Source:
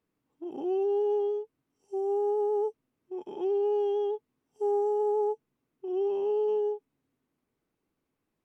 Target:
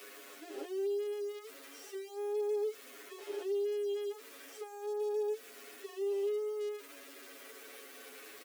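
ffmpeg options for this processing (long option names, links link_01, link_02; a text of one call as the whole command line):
ffmpeg -i in.wav -filter_complex "[0:a]aeval=exprs='val(0)+0.5*0.00841*sgn(val(0))':channel_layout=same,highpass=frequency=410:width=0.5412,highpass=frequency=410:width=1.3066,equalizer=frequency=890:width_type=o:width=0.52:gain=-14.5,acompressor=threshold=-38dB:ratio=6,aecho=1:1:7.2:0.83,acrossover=split=2600[link_01][link_02];[link_02]acompressor=threshold=-57dB:ratio=4:attack=1:release=60[link_03];[link_01][link_03]amix=inputs=2:normalize=0,highshelf=frequency=2500:gain=8.5,asplit=2[link_04][link_05];[link_05]adelay=9.5,afreqshift=-0.35[link_06];[link_04][link_06]amix=inputs=2:normalize=1,volume=1.5dB" out.wav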